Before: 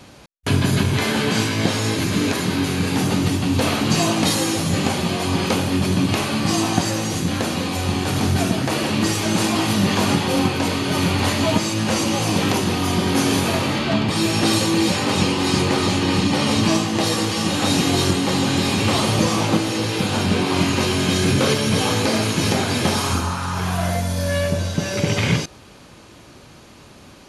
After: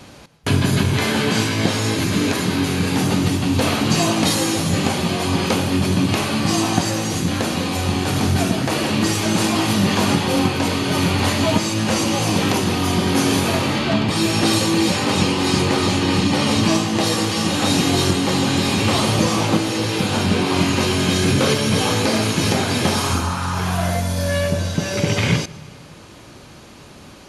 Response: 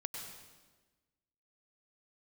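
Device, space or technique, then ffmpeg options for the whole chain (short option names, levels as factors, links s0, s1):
ducked reverb: -filter_complex "[0:a]asplit=3[s0][s1][s2];[1:a]atrim=start_sample=2205[s3];[s1][s3]afir=irnorm=-1:irlink=0[s4];[s2]apad=whole_len=1203303[s5];[s4][s5]sidechaincompress=threshold=0.0794:ratio=8:attack=6.4:release=851,volume=0.473[s6];[s0][s6]amix=inputs=2:normalize=0"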